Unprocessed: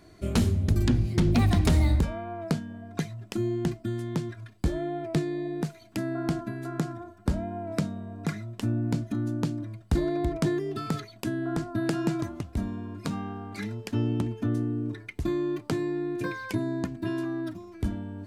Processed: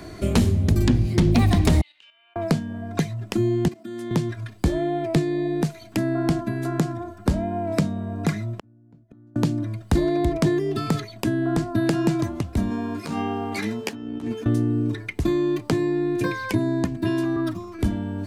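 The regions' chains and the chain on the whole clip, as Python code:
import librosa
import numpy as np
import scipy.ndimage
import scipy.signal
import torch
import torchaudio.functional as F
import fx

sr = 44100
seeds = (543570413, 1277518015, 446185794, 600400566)

y = fx.chain(x, sr, fx.ladder_bandpass(hz=3000.0, resonance_pct=85),
    fx.high_shelf(hz=2300.0, db=-7.5),
    fx.level_steps(step_db=10), at=(1.81, 2.36))
y = fx.chain(y, sr, fx.highpass(hz=190.0, slope=24),
    fx.level_steps(step_db=14), at=(3.68, 4.11))
y = fx.chain(y, sr, fx.lowpass(hz=1000.0, slope=6),
    fx.gate_flip(shuts_db=-26.0, range_db=-39), at=(8.59, 9.36))
y = fx.chain(y, sr, fx.highpass(hz=300.0, slope=6),
    fx.over_compress(threshold_db=-37.0, ratio=-0.5),
    fx.doubler(ms=13.0, db=-4.0), at=(12.7, 14.46))
y = fx.chain(y, sr, fx.peak_eq(hz=1200.0, db=13.5, octaves=0.27),
    fx.band_widen(depth_pct=40), at=(17.36, 17.79))
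y = fx.dynamic_eq(y, sr, hz=1400.0, q=5.0, threshold_db=-55.0, ratio=4.0, max_db=-5)
y = fx.band_squash(y, sr, depth_pct=40)
y = y * 10.0 ** (6.5 / 20.0)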